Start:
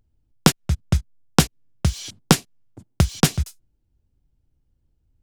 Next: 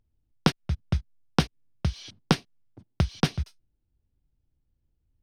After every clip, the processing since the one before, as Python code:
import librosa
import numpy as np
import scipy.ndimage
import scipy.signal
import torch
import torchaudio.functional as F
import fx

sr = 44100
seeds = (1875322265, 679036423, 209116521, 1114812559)

y = scipy.signal.savgol_filter(x, 15, 4, mode='constant')
y = F.gain(torch.from_numpy(y), -6.5).numpy()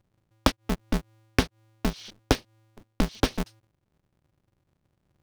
y = x * np.sign(np.sin(2.0 * np.pi * 110.0 * np.arange(len(x)) / sr))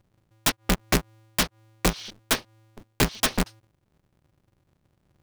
y = fx.dynamic_eq(x, sr, hz=1100.0, q=0.72, threshold_db=-41.0, ratio=4.0, max_db=6)
y = (np.mod(10.0 ** (18.0 / 20.0) * y + 1.0, 2.0) - 1.0) / 10.0 ** (18.0 / 20.0)
y = F.gain(torch.from_numpy(y), 4.5).numpy()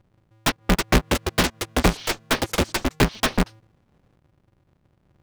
y = fx.high_shelf(x, sr, hz=4600.0, db=-10.5)
y = fx.echo_pitch(y, sr, ms=459, semitones=6, count=2, db_per_echo=-3.0)
y = F.gain(torch.from_numpy(y), 4.5).numpy()